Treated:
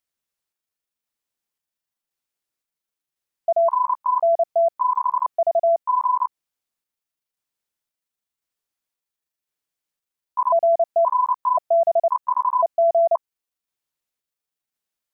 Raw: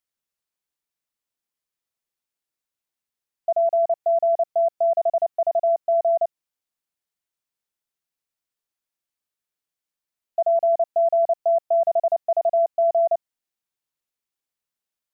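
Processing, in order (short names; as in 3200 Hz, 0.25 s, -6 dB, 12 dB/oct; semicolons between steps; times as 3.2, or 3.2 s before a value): trilling pitch shifter +7 st, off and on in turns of 0.526 s; gain +2 dB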